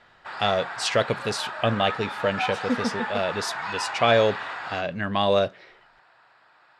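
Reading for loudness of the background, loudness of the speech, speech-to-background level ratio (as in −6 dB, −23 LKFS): −32.5 LKFS, −25.5 LKFS, 7.0 dB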